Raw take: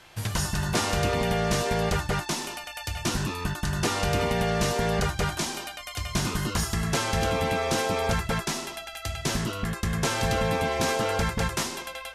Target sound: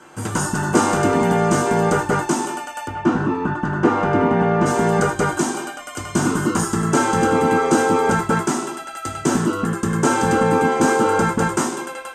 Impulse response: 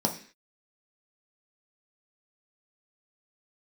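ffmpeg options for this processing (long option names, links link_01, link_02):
-filter_complex "[0:a]asplit=3[link_01][link_02][link_03];[link_01]afade=type=out:start_time=2.86:duration=0.02[link_04];[link_02]lowpass=2400,afade=type=in:start_time=2.86:duration=0.02,afade=type=out:start_time=4.65:duration=0.02[link_05];[link_03]afade=type=in:start_time=4.65:duration=0.02[link_06];[link_04][link_05][link_06]amix=inputs=3:normalize=0[link_07];[1:a]atrim=start_sample=2205,asetrate=66150,aresample=44100[link_08];[link_07][link_08]afir=irnorm=-1:irlink=0"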